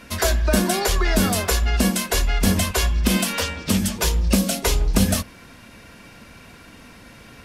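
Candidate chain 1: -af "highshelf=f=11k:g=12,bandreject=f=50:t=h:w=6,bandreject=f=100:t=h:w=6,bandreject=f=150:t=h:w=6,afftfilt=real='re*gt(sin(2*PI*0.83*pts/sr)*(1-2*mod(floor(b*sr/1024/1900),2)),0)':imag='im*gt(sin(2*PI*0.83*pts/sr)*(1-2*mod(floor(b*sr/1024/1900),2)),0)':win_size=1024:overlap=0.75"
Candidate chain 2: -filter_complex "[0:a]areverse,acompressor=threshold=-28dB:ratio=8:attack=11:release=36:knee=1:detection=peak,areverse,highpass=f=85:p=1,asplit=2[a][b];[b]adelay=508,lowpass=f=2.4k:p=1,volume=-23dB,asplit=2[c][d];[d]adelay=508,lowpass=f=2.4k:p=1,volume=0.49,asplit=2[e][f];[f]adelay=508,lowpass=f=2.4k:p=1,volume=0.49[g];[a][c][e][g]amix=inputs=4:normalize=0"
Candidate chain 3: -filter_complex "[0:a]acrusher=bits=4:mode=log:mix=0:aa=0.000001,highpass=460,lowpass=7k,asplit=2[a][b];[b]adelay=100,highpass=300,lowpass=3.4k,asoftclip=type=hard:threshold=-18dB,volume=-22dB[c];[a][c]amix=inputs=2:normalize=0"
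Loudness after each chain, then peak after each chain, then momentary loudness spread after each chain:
-22.0, -30.0, -25.5 LUFS; -4.0, -16.0, -8.0 dBFS; 5, 16, 4 LU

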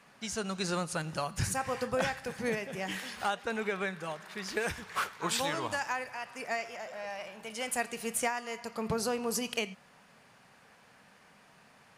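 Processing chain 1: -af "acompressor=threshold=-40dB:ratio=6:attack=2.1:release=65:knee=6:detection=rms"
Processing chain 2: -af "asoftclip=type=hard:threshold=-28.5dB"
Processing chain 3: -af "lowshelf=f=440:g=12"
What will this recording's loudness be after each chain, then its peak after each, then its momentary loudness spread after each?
-44.5, -35.5, -30.0 LUFS; -31.0, -28.5, -10.5 dBFS; 16, 7, 10 LU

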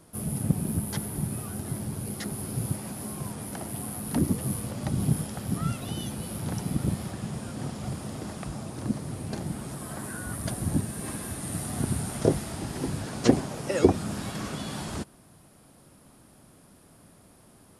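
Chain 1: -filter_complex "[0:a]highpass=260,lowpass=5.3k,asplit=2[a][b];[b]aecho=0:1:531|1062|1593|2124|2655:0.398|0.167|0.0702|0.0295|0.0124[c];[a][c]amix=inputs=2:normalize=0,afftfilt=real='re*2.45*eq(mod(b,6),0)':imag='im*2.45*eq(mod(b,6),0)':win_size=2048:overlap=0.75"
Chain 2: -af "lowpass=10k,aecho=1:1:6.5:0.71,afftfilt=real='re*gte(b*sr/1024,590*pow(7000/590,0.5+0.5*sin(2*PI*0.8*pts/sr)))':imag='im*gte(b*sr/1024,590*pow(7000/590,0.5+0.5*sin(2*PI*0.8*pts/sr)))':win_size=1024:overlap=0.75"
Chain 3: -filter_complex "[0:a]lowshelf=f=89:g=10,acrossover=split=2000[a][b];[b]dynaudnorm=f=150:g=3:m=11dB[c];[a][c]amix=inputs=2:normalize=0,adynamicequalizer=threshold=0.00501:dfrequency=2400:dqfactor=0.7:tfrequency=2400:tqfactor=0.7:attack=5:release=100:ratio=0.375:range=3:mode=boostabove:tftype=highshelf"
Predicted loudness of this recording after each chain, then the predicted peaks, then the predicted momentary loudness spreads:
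-36.0, -39.5, -22.0 LUFS; -10.0, -15.5, -2.5 dBFS; 12, 11, 9 LU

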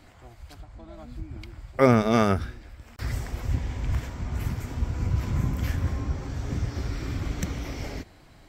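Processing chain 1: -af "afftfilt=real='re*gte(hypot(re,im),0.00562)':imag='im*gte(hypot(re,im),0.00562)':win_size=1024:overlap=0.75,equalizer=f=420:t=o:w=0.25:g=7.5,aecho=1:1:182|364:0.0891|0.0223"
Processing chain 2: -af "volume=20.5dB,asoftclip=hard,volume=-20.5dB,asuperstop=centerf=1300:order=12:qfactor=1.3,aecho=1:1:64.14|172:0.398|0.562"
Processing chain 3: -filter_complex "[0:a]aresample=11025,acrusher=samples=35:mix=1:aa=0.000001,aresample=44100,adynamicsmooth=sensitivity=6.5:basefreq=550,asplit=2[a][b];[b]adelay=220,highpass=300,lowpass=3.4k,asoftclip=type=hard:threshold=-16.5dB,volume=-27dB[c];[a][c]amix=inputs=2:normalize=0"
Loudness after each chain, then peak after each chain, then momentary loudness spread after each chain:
-27.0, -29.0, -28.0 LUFS; -5.0, -13.0, -7.5 dBFS; 21, 18, 20 LU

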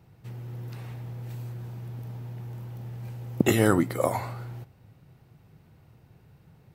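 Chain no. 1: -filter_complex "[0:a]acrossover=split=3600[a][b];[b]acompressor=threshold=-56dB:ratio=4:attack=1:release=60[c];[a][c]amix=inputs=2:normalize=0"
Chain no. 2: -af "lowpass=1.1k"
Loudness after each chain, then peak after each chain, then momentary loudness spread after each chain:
-30.5, -31.0 LUFS; -7.0, -7.0 dBFS; 18, 17 LU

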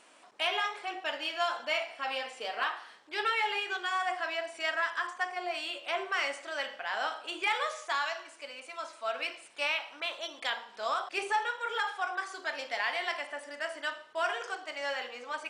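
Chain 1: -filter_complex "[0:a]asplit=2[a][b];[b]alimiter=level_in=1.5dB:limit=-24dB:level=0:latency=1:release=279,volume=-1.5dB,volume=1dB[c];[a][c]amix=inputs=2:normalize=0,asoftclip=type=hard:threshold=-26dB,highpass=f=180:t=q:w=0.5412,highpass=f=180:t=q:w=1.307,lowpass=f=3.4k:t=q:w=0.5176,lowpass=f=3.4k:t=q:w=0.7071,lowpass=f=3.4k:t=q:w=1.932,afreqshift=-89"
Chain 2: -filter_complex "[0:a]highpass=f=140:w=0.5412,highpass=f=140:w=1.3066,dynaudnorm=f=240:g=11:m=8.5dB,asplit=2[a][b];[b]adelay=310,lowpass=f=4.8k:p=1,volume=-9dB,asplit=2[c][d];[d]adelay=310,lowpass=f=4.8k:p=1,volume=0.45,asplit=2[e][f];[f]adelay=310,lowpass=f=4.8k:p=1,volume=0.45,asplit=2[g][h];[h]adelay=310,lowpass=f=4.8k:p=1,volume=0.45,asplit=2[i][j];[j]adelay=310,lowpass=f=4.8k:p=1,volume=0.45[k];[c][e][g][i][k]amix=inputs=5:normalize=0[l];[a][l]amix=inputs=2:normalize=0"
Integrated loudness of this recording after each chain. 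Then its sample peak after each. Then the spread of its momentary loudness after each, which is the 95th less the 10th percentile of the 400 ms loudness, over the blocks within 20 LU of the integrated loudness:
-31.5, -25.0 LUFS; -19.5, -8.5 dBFS; 5, 9 LU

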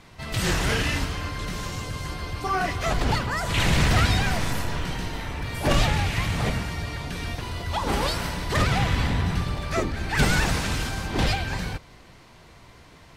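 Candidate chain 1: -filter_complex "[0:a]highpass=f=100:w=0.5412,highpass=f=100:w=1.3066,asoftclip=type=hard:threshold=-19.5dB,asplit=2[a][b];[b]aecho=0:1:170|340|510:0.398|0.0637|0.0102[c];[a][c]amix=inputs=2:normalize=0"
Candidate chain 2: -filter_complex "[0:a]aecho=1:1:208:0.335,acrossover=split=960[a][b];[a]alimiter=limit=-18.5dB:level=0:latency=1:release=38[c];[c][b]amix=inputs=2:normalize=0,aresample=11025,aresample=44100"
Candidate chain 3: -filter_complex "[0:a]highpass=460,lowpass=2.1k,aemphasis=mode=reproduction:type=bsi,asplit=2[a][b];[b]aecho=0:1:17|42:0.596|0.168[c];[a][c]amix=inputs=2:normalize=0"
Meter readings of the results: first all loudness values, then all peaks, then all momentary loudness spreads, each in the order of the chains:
-26.5, -26.5, -29.5 LUFS; -16.0, -10.5, -13.0 dBFS; 9, 9, 11 LU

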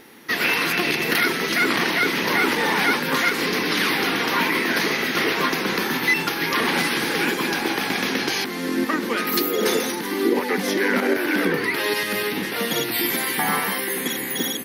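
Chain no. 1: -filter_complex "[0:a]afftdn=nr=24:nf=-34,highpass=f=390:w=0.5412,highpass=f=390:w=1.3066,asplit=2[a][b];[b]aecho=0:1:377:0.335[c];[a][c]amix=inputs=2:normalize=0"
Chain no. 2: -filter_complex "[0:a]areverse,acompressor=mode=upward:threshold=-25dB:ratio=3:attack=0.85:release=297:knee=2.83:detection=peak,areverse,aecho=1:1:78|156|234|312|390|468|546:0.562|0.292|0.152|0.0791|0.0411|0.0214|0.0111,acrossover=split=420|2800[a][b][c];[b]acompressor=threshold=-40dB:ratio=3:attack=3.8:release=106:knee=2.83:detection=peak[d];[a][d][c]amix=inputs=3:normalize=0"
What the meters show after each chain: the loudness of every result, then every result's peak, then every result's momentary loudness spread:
-22.0, -23.5 LUFS; -7.0, -10.5 dBFS; 5, 3 LU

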